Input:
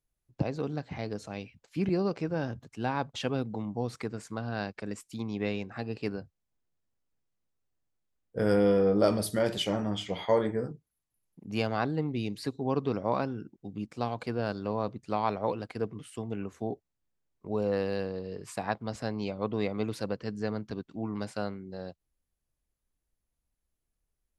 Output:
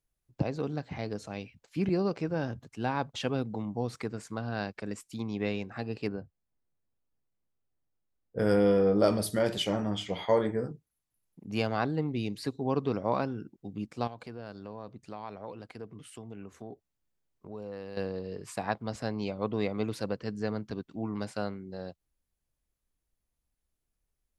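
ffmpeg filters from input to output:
-filter_complex "[0:a]asettb=1/sr,asplit=3[s0][s1][s2];[s0]atrim=end=6.074[s3];[s1]atrim=start=6.07:end=8.39,asetpts=PTS-STARTPTS,afade=t=in:d=0.004:c=qsin,afade=t=out:st=2.316:d=0.004:c=qsin,lowpass=f=1300:p=1[s4];[s2]atrim=start=8.386[s5];[s3][s4]acrossfade=d=0.004:c1=hsin:c2=qsin[s6];[s6][s5]acrossfade=d=0.004:c1=qsin:c2=hsin,asettb=1/sr,asplit=3[s7][s8][s9];[s7]atrim=end=14.074[s10];[s8]atrim=start=14.07:end=17.97,asetpts=PTS-STARTPTS,afade=t=in:d=0.004:c=qsin,afade=t=out:st=3.896:d=0.004:c=qsin,acompressor=threshold=0.00501:ratio=2:attack=3.2:release=140:knee=1:detection=peak[s11];[s9]atrim=start=17.966[s12];[s10][s11]acrossfade=d=0.004:c1=hsin:c2=qsin[s13];[s13][s12]acrossfade=d=0.004:c1=qsin:c2=hsin"

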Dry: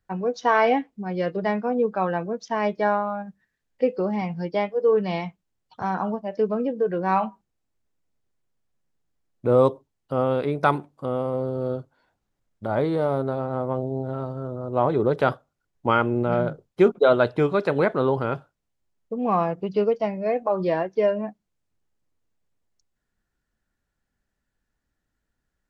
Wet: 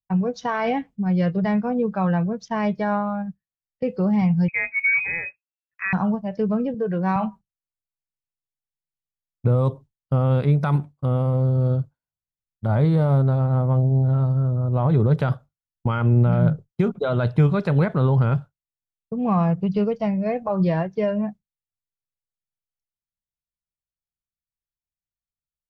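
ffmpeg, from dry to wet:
-filter_complex "[0:a]asettb=1/sr,asplit=3[s0][s1][s2];[s0]atrim=end=4.484[s3];[s1]atrim=start=4.48:end=5.93,asetpts=PTS-STARTPTS,afade=t=in:d=0.004:c=qsin,afade=t=out:st=1.446:d=0.004:c=qsin,lowpass=f=2300:t=q:w=0.5098,lowpass=f=2300:t=q:w=0.6013,lowpass=f=2300:t=q:w=0.9,lowpass=f=2300:t=q:w=2.563,afreqshift=-2700[s4];[s2]atrim=start=5.926[s5];[s3][s4]acrossfade=d=0.004:c1=hsin:c2=qsin[s6];[s6][s5]acrossfade=d=0.004:c1=qsin:c2=hsin,asettb=1/sr,asplit=3[s7][s8][s9];[s7]atrim=end=6.744[s10];[s8]atrim=start=6.74:end=7.16,asetpts=PTS-STARTPTS,afade=t=in:d=0.004:c=qsin,afade=t=out:st=0.416:d=0.004:c=qsin,highpass=180[s11];[s9]atrim=start=7.156[s12];[s10][s11]acrossfade=d=0.004:c1=hsin:c2=qsin[s13];[s13][s12]acrossfade=d=0.004:c1=qsin:c2=hsin,agate=range=0.0224:threshold=0.0178:ratio=3:detection=peak,alimiter=limit=0.211:level=0:latency=1:release=52,lowshelf=f=220:t=q:w=1.5:g=12"

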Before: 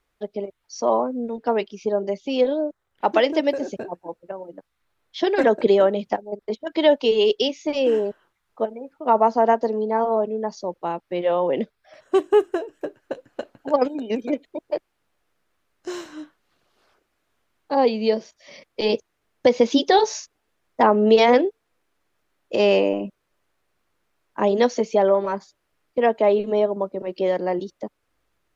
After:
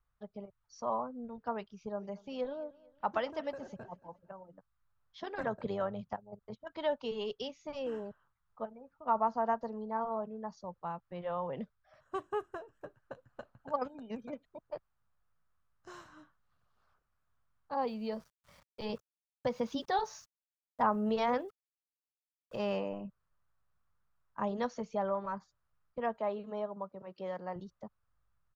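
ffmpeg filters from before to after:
-filter_complex "[0:a]asplit=3[s0][s1][s2];[s0]afade=t=out:st=1.93:d=0.02[s3];[s1]aecho=1:1:226|452|678:0.0794|0.0318|0.0127,afade=t=in:st=1.93:d=0.02,afade=t=out:st=4.42:d=0.02[s4];[s2]afade=t=in:st=4.42:d=0.02[s5];[s3][s4][s5]amix=inputs=3:normalize=0,asettb=1/sr,asplit=3[s6][s7][s8];[s6]atrim=end=5.204[s9];[s7]atrim=start=5.2:end=6.6,asetpts=PTS-STARTPTS,afade=t=in:d=0.004:c=qsin,afade=t=out:st=1.396:d=0.004:c=qsin,tremolo=f=93:d=0.4[s10];[s8]atrim=start=6.596[s11];[s9][s10]acrossfade=d=0.004:c1=hsin:c2=qsin[s12];[s12][s11]acrossfade=d=0.004:c1=qsin:c2=hsin,asettb=1/sr,asplit=3[s13][s14][s15];[s13]atrim=end=17.804[s16];[s14]atrim=start=17.8:end=22.77,asetpts=PTS-STARTPTS,afade=t=in:d=0.004:c=qsin,afade=t=out:st=4.966:d=0.004:c=qsin,aeval=exprs='val(0)*gte(abs(val(0)),0.0075)':c=same[s17];[s15]atrim=start=22.766[s18];[s16][s17]acrossfade=d=0.004:c1=hsin:c2=qsin[s19];[s19][s18]acrossfade=d=0.004:c1=qsin:c2=hsin,asettb=1/sr,asplit=3[s20][s21][s22];[s20]atrim=end=26.174[s23];[s21]atrim=start=26.17:end=27.56,asetpts=PTS-STARTPTS,afade=t=in:d=0.004:c=qsin,afade=t=out:st=1.386:d=0.004:c=qsin,highpass=f=230:p=1[s24];[s22]atrim=start=27.556[s25];[s23][s24]acrossfade=d=0.004:c1=hsin:c2=qsin[s26];[s26][s25]acrossfade=d=0.004:c1=qsin:c2=hsin,firequalizer=gain_entry='entry(120,0);entry(320,-22);entry(490,-16);entry(1200,-5);entry(2100,-17)':delay=0.05:min_phase=1,volume=0.794"

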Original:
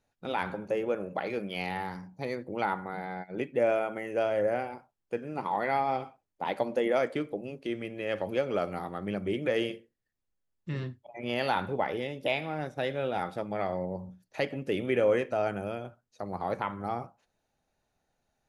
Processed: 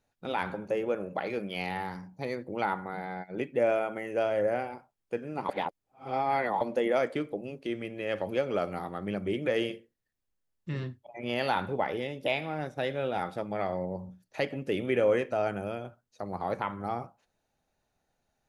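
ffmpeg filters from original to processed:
-filter_complex "[0:a]asplit=3[s0][s1][s2];[s0]atrim=end=5.492[s3];[s1]atrim=start=5.488:end=6.612,asetpts=PTS-STARTPTS,areverse[s4];[s2]atrim=start=6.608[s5];[s3][s4]acrossfade=d=0.004:c1=hsin:c2=hsin[s6];[s6][s5]acrossfade=d=0.004:c1=hsin:c2=hsin"

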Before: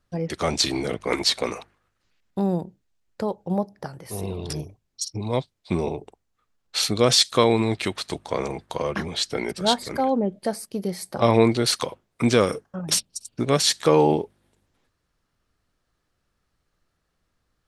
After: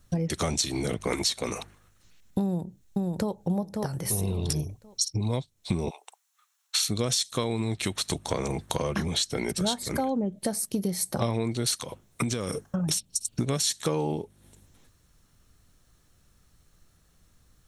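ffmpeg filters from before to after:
-filter_complex "[0:a]asplit=2[s0][s1];[s1]afade=t=in:st=2.42:d=0.01,afade=t=out:st=3.43:d=0.01,aecho=0:1:540|1080|1620:0.446684|0.0893367|0.0178673[s2];[s0][s2]amix=inputs=2:normalize=0,asplit=3[s3][s4][s5];[s3]afade=t=out:st=5.89:d=0.02[s6];[s4]highpass=f=900:w=0.5412,highpass=f=900:w=1.3066,afade=t=in:st=5.89:d=0.02,afade=t=out:st=6.86:d=0.02[s7];[s5]afade=t=in:st=6.86:d=0.02[s8];[s6][s7][s8]amix=inputs=3:normalize=0,asettb=1/sr,asplit=3[s9][s10][s11];[s9]atrim=end=11.764[s12];[s10]atrim=start=11.76:end=13.37,asetpts=PTS-STARTPTS,afade=t=in:d=0.004:c=qsin,afade=t=out:st=1.606:d=0.004:c=qsin,acompressor=threshold=0.0398:ratio=4:attack=3.2:release=140:knee=1:detection=peak[s13];[s11]atrim=start=13.366[s14];[s12][s13]acrossfade=d=0.004:c1=hsin:c2=qsin[s15];[s15][s14]acrossfade=d=0.004:c1=qsin:c2=hsin,bass=f=250:g=8,treble=f=4000:g=11,bandreject=f=4800:w=8.1,acompressor=threshold=0.0282:ratio=6,volume=1.88"

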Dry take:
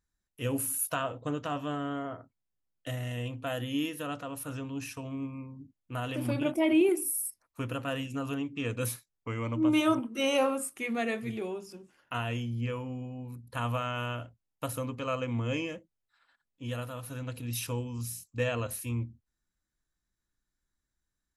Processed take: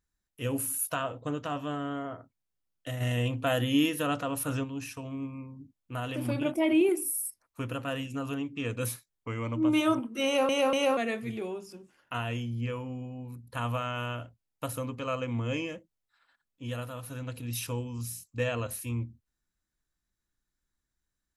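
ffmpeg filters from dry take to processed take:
-filter_complex "[0:a]asplit=3[s0][s1][s2];[s0]afade=t=out:st=3:d=0.02[s3];[s1]acontrast=69,afade=t=in:st=3:d=0.02,afade=t=out:st=4.63:d=0.02[s4];[s2]afade=t=in:st=4.63:d=0.02[s5];[s3][s4][s5]amix=inputs=3:normalize=0,asplit=4[s6][s7][s8][s9];[s6]atrim=end=10.492[s10];[s7]atrim=start=10.248:end=10.492[s11];[s8]atrim=start=10.248:end=10.492[s12];[s9]atrim=start=10.968[s13];[s10][s11]acrossfade=d=0.004:c1=hsin:c2=hsin[s14];[s14][s12]acrossfade=d=0.004:c1=hsin:c2=hsin[s15];[s15][s13]acrossfade=d=0.004:c1=hsin:c2=hsin"

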